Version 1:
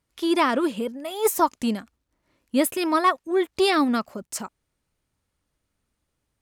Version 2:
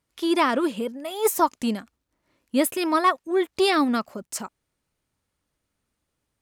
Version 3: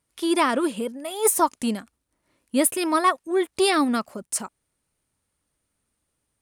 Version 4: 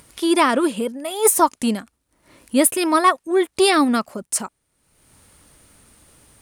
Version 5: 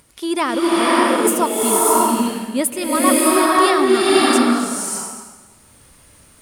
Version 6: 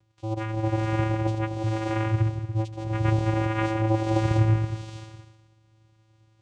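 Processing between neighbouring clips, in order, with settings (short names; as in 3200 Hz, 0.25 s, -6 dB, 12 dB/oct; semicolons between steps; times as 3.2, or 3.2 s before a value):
low shelf 82 Hz -6 dB
bell 9400 Hz +11 dB 0.35 oct
upward compressor, threshold -39 dBFS; gain +4.5 dB
bloom reverb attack 0.6 s, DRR -7 dB; gain -4 dB
vocoder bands 4, square 110 Hz; gain -8 dB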